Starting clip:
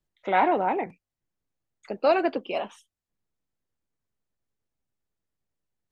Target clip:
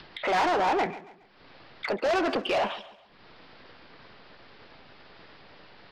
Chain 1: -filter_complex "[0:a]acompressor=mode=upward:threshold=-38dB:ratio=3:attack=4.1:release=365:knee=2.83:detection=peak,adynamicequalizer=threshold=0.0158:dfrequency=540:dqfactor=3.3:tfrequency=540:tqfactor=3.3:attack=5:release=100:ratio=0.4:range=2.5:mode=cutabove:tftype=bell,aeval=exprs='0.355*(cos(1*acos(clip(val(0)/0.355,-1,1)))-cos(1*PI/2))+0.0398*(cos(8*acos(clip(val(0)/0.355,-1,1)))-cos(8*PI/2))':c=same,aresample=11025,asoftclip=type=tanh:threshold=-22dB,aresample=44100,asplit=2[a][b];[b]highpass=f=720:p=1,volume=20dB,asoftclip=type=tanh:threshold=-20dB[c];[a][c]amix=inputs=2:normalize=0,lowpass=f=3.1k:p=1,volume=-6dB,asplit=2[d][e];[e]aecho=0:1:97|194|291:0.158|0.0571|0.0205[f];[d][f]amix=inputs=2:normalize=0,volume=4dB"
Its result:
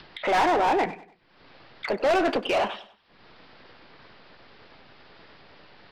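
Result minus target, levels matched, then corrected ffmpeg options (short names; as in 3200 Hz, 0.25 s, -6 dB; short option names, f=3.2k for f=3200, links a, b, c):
echo 42 ms early; soft clip: distortion -7 dB
-filter_complex "[0:a]acompressor=mode=upward:threshold=-38dB:ratio=3:attack=4.1:release=365:knee=2.83:detection=peak,adynamicequalizer=threshold=0.0158:dfrequency=540:dqfactor=3.3:tfrequency=540:tqfactor=3.3:attack=5:release=100:ratio=0.4:range=2.5:mode=cutabove:tftype=bell,aeval=exprs='0.355*(cos(1*acos(clip(val(0)/0.355,-1,1)))-cos(1*PI/2))+0.0398*(cos(8*acos(clip(val(0)/0.355,-1,1)))-cos(8*PI/2))':c=same,aresample=11025,asoftclip=type=tanh:threshold=-32.5dB,aresample=44100,asplit=2[a][b];[b]highpass=f=720:p=1,volume=20dB,asoftclip=type=tanh:threshold=-20dB[c];[a][c]amix=inputs=2:normalize=0,lowpass=f=3.1k:p=1,volume=-6dB,asplit=2[d][e];[e]aecho=0:1:139|278|417:0.158|0.0571|0.0205[f];[d][f]amix=inputs=2:normalize=0,volume=4dB"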